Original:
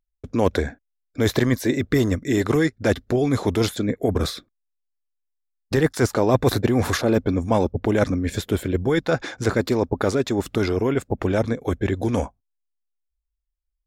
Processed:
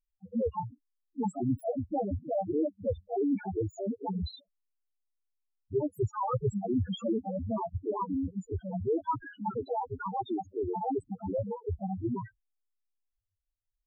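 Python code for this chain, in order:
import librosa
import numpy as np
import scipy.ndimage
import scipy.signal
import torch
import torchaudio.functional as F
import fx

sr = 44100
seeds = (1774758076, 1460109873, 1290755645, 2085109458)

y = fx.pitch_trill(x, sr, semitones=11.5, every_ms=176)
y = fx.dynamic_eq(y, sr, hz=1500.0, q=5.2, threshold_db=-46.0, ratio=4.0, max_db=4)
y = fx.spec_topn(y, sr, count=2)
y = F.gain(torch.from_numpy(y), -4.0).numpy()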